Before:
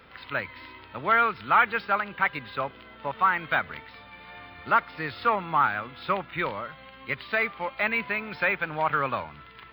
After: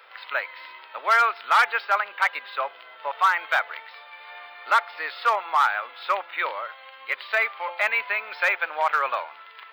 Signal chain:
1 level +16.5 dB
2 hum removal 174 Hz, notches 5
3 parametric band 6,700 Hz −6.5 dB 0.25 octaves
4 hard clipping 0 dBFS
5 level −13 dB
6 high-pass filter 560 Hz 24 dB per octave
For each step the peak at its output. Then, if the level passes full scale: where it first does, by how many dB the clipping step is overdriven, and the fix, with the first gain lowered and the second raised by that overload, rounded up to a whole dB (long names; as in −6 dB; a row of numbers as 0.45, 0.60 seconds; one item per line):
+5.5, +6.0, +6.0, 0.0, −13.0, −8.5 dBFS
step 1, 6.0 dB
step 1 +10.5 dB, step 5 −7 dB